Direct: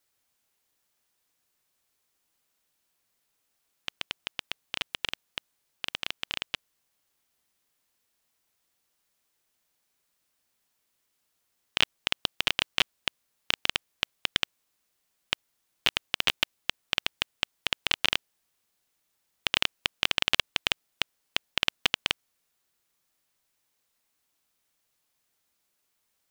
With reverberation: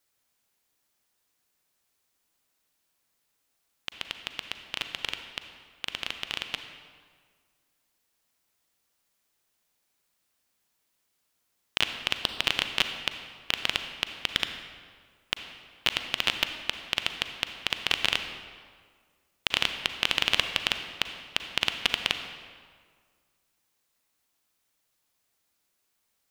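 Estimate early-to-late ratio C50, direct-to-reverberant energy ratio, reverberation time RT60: 7.5 dB, 7.0 dB, 1.8 s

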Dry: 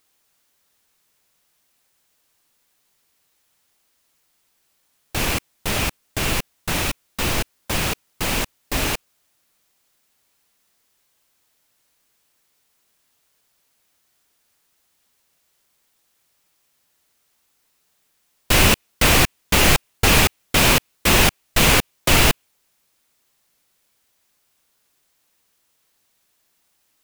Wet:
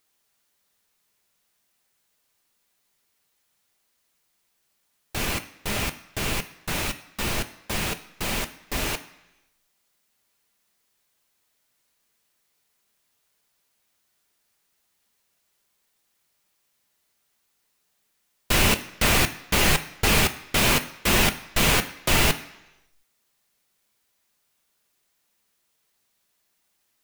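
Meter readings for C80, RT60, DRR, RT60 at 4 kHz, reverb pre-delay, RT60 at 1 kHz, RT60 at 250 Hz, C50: 17.0 dB, 1.0 s, 7.0 dB, 0.95 s, 4 ms, 1.0 s, 0.85 s, 14.5 dB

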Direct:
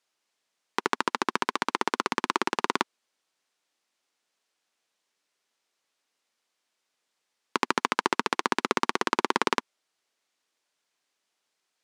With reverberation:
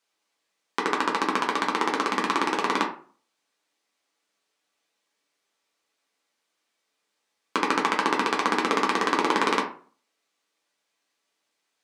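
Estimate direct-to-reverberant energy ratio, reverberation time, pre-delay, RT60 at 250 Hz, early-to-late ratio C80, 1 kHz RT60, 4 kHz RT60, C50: −2.0 dB, 0.45 s, 5 ms, 0.50 s, 13.5 dB, 0.45 s, 0.25 s, 9.0 dB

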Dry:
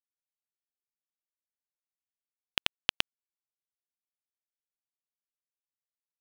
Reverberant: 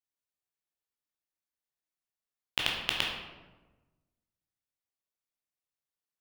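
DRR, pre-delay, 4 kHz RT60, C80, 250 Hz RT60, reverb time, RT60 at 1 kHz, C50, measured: −2.5 dB, 12 ms, 0.70 s, 4.5 dB, 1.5 s, 1.2 s, 1.1 s, 2.5 dB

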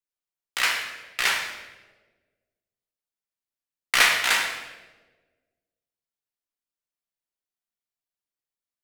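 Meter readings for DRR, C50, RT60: 1.0 dB, 4.5 dB, 1.3 s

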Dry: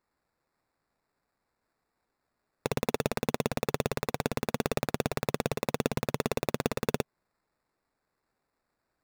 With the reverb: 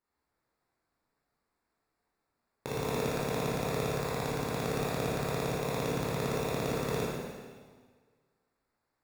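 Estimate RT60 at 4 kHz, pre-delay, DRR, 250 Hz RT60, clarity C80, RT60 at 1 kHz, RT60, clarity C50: 1.5 s, 7 ms, −7.5 dB, 1.6 s, 0.0 dB, 1.6 s, 1.6 s, −2.5 dB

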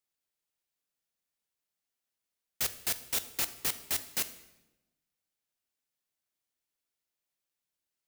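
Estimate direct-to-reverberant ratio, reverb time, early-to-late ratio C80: 11.0 dB, 0.95 s, 16.0 dB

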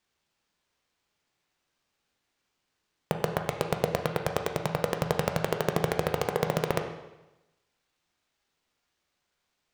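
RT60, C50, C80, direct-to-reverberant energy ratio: 1.0 s, 7.0 dB, 9.5 dB, 4.0 dB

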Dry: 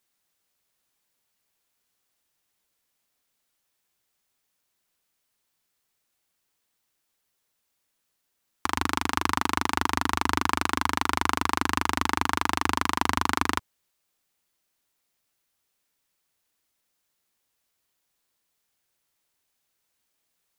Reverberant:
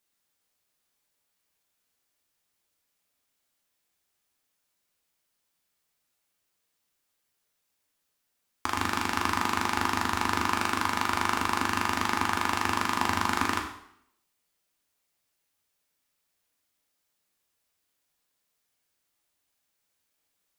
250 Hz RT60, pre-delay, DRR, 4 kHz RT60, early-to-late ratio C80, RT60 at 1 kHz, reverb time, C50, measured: 0.70 s, 4 ms, 1.5 dB, 0.65 s, 9.5 dB, 0.70 s, 0.70 s, 6.5 dB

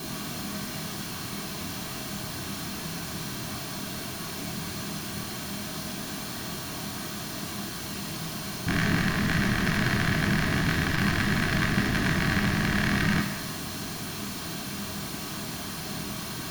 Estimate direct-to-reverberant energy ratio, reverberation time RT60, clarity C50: 2.5 dB, 1.2 s, 6.0 dB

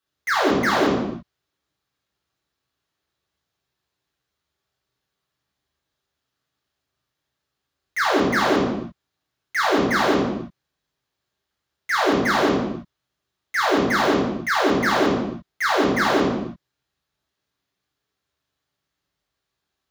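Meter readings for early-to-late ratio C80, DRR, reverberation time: 4.5 dB, −5.0 dB, non-exponential decay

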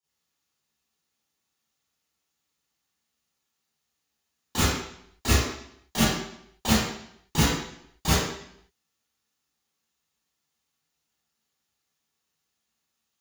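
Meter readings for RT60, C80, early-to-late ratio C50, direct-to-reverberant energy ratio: 0.70 s, 1.5 dB, −3.0 dB, −13.5 dB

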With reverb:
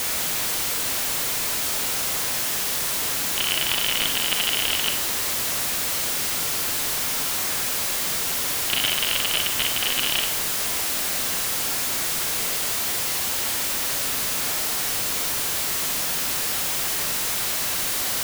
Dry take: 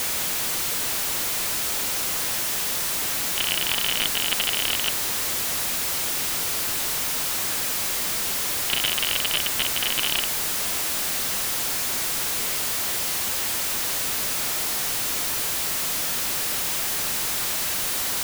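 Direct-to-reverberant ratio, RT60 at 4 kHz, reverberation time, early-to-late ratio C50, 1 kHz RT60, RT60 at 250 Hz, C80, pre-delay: 5.0 dB, 0.50 s, 0.55 s, 7.5 dB, 0.55 s, 0.50 s, 12.5 dB, 37 ms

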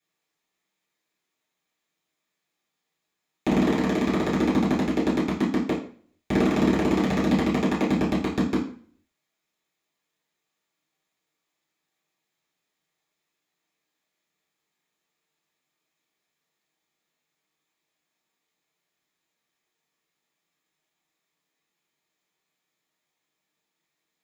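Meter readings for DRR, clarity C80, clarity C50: −8.5 dB, 11.0 dB, 6.5 dB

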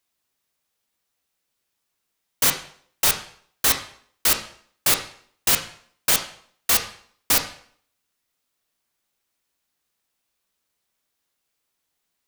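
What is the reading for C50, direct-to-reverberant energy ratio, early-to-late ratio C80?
9.5 dB, 4.5 dB, 13.0 dB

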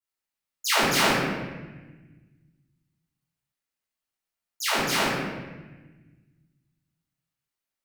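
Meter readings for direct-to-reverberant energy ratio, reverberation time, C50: −15.5 dB, 1.2 s, −1.5 dB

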